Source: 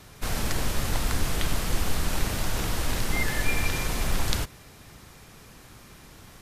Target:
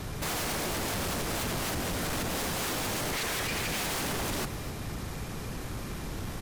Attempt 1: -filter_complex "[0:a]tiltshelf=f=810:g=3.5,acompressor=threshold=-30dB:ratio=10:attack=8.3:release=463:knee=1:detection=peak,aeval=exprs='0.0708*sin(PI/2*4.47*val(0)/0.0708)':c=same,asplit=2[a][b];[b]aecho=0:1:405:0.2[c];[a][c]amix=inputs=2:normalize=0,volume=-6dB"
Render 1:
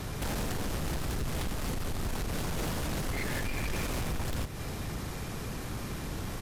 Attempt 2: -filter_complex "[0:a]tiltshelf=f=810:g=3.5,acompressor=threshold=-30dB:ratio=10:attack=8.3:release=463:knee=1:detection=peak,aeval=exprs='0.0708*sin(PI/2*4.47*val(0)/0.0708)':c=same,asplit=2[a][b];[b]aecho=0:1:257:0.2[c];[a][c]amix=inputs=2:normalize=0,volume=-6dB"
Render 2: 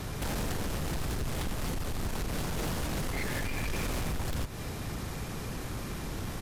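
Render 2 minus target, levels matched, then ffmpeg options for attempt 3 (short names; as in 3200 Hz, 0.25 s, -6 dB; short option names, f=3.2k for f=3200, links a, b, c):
compressor: peak gain reduction +8 dB
-filter_complex "[0:a]tiltshelf=f=810:g=3.5,acompressor=threshold=-21dB:ratio=10:attack=8.3:release=463:knee=1:detection=peak,aeval=exprs='0.0708*sin(PI/2*4.47*val(0)/0.0708)':c=same,asplit=2[a][b];[b]aecho=0:1:257:0.2[c];[a][c]amix=inputs=2:normalize=0,volume=-6dB"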